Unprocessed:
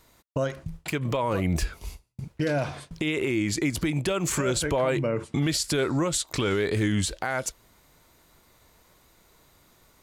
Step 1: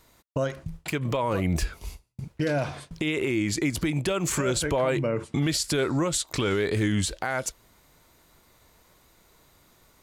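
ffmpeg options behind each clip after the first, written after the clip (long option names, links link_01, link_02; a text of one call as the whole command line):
ffmpeg -i in.wav -af anull out.wav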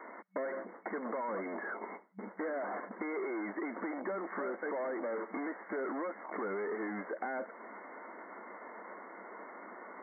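ffmpeg -i in.wav -filter_complex "[0:a]asplit=2[link_01][link_02];[link_02]highpass=frequency=720:poles=1,volume=31dB,asoftclip=type=tanh:threshold=-16.5dB[link_03];[link_01][link_03]amix=inputs=2:normalize=0,lowpass=frequency=1200:poles=1,volume=-6dB,afftfilt=real='re*between(b*sr/4096,190,2200)':imag='im*between(b*sr/4096,190,2200)':win_size=4096:overlap=0.75,acrossover=split=450|1400[link_04][link_05][link_06];[link_04]acompressor=threshold=-40dB:ratio=4[link_07];[link_05]acompressor=threshold=-35dB:ratio=4[link_08];[link_06]acompressor=threshold=-45dB:ratio=4[link_09];[link_07][link_08][link_09]amix=inputs=3:normalize=0,volume=-4.5dB" out.wav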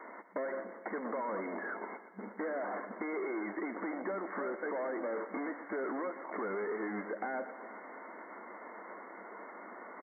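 ffmpeg -i in.wav -af "aecho=1:1:119|238|357|476|595|714:0.224|0.132|0.0779|0.046|0.0271|0.016" out.wav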